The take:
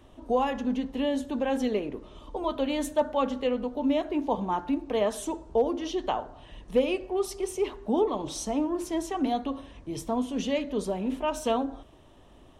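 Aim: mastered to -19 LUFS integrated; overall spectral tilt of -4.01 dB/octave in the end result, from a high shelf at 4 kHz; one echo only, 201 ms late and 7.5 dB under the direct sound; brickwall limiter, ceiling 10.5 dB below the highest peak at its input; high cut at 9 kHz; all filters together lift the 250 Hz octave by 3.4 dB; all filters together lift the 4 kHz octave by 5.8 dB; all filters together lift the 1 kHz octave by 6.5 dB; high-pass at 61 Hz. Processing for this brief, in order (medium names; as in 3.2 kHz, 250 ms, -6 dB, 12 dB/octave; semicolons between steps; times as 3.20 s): high-pass 61 Hz; low-pass 9 kHz; peaking EQ 250 Hz +3.5 dB; peaking EQ 1 kHz +7.5 dB; treble shelf 4 kHz +6.5 dB; peaking EQ 4 kHz +4 dB; peak limiter -19 dBFS; delay 201 ms -7.5 dB; trim +9 dB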